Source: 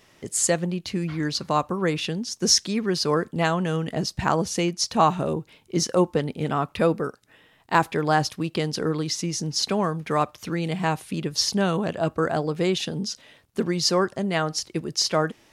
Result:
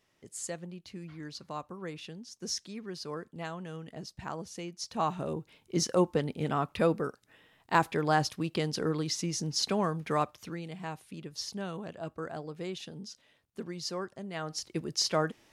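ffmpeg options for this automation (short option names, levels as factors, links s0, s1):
-af "volume=1.5,afade=t=in:st=4.7:d=1.09:silence=0.281838,afade=t=out:st=10.12:d=0.55:silence=0.334965,afade=t=in:st=14.33:d=0.47:silence=0.354813"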